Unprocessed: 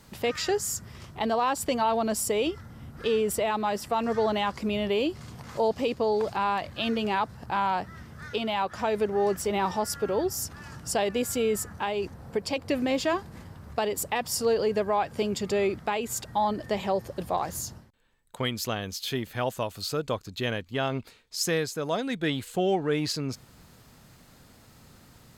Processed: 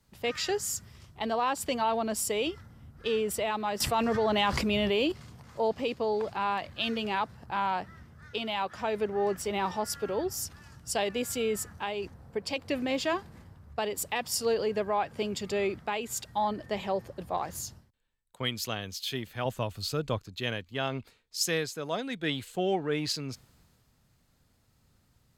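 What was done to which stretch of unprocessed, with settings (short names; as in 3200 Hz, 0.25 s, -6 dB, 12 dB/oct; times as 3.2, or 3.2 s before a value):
3.8–5.12 fast leveller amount 70%
19.45–20.18 low shelf 180 Hz +9 dB
whole clip: dynamic EQ 2900 Hz, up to +4 dB, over -45 dBFS, Q 0.88; three-band expander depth 40%; gain -4 dB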